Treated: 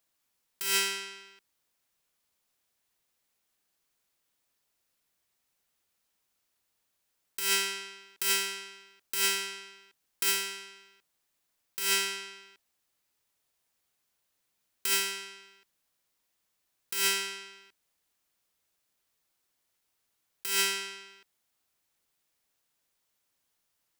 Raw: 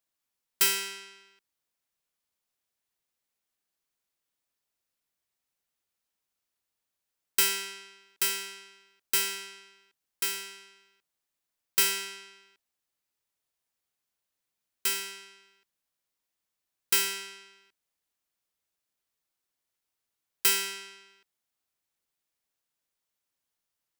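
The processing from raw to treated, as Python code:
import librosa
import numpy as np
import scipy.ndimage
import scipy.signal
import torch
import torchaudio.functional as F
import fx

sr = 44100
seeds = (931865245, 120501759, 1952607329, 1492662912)

y = fx.over_compress(x, sr, threshold_db=-31.0, ratio=-1.0)
y = F.gain(torch.from_numpy(y), 3.0).numpy()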